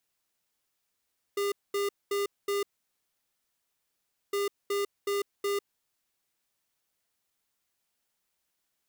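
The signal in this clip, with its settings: beep pattern square 403 Hz, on 0.15 s, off 0.22 s, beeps 4, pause 1.70 s, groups 2, -29 dBFS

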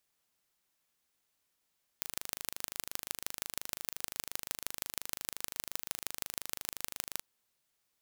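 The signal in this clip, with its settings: pulse train 25.7 per s, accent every 4, -6 dBFS 5.18 s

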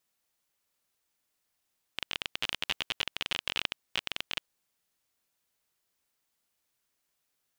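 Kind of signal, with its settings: random clicks 27 per s -13 dBFS 2.47 s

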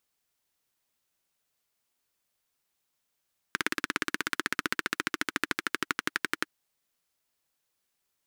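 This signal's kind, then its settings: single-cylinder engine model, changing speed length 2.96 s, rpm 2100, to 1300, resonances 310/1500 Hz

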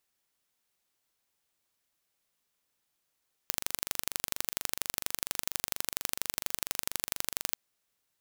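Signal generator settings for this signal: pulse train 24.3 per s, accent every 2, -1.5 dBFS 4.06 s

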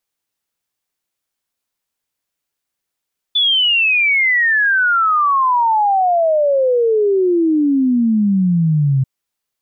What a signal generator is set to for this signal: log sweep 3.5 kHz -> 130 Hz 5.69 s -11 dBFS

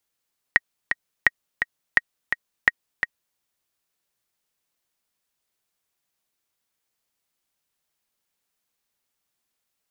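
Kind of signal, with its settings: metronome 170 bpm, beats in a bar 2, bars 4, 1.89 kHz, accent 7 dB -1.5 dBFS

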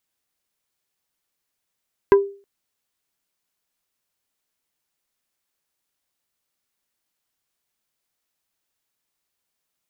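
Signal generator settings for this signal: wood hit plate, length 0.32 s, lowest mode 398 Hz, decay 0.38 s, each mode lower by 7 dB, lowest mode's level -6 dB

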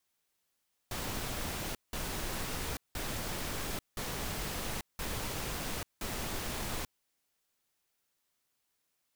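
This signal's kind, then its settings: noise bursts pink, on 0.84 s, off 0.18 s, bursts 6, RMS -37 dBFS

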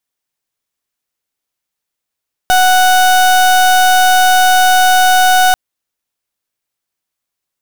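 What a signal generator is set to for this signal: pulse 740 Hz, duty 31% -8.5 dBFS 3.04 s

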